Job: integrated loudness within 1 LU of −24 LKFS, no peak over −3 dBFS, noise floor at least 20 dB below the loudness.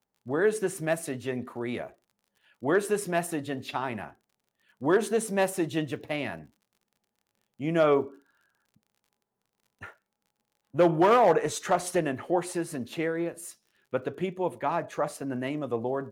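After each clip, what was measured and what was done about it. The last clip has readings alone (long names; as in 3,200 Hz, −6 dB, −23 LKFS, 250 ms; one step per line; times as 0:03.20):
crackle rate 39 per second; integrated loudness −28.5 LKFS; sample peak −12.5 dBFS; target loudness −24.0 LKFS
→ click removal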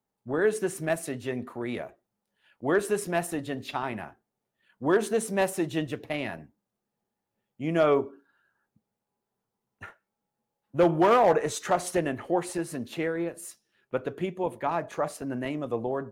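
crackle rate 0.12 per second; integrated loudness −28.5 LKFS; sample peak −11.5 dBFS; target loudness −24.0 LKFS
→ level +4.5 dB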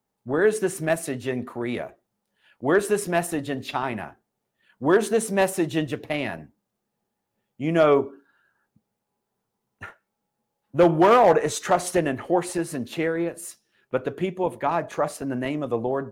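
integrated loudness −24.0 LKFS; sample peak −7.0 dBFS; background noise floor −80 dBFS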